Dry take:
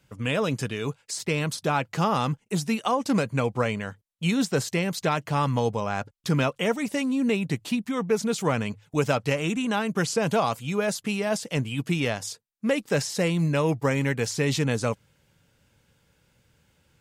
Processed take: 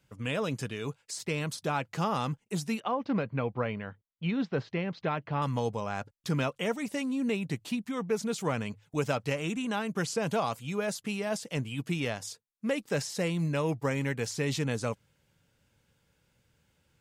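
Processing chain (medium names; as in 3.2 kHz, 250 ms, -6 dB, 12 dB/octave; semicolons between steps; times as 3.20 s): 2.80–5.42 s: Bessel low-pass 2.6 kHz, order 6; trim -6 dB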